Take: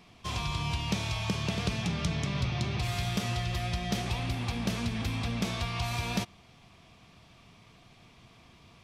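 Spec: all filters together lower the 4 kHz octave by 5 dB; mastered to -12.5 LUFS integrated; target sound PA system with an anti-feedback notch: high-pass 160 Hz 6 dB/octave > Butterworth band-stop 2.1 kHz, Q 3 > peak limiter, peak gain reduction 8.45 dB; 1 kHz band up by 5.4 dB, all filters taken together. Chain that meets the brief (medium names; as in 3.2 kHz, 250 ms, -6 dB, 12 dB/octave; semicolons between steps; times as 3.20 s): high-pass 160 Hz 6 dB/octave; Butterworth band-stop 2.1 kHz, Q 3; peaking EQ 1 kHz +7.5 dB; peaking EQ 4 kHz -7 dB; trim +23.5 dB; peak limiter -3 dBFS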